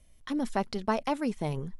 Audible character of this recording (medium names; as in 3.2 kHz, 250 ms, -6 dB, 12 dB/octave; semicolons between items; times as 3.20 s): noise floor -58 dBFS; spectral tilt -5.5 dB/octave